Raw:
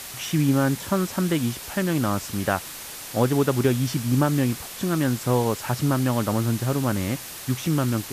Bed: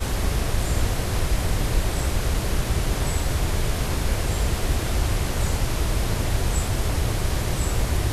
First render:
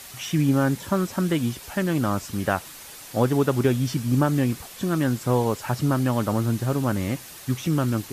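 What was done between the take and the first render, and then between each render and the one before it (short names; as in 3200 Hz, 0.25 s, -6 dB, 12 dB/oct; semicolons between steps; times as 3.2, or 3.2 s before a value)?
denoiser 6 dB, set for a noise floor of -38 dBFS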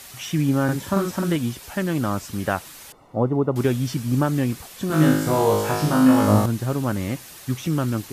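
0.64–1.36 doubler 46 ms -3 dB; 2.92–3.56 polynomial smoothing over 65 samples; 4.88–6.46 flutter echo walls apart 3.3 m, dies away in 0.89 s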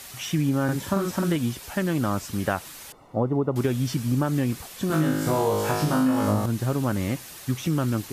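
compressor, threshold -19 dBFS, peak gain reduction 8.5 dB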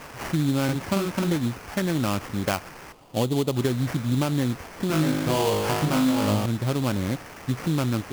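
sample-rate reducer 3800 Hz, jitter 20%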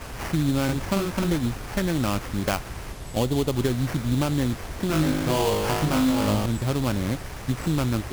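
add bed -13.5 dB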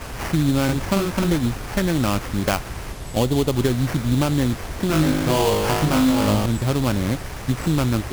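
gain +4 dB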